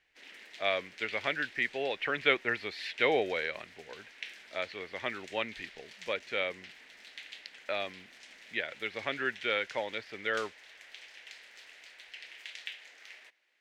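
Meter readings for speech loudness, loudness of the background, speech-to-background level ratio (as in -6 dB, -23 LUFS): -33.5 LUFS, -48.5 LUFS, 15.0 dB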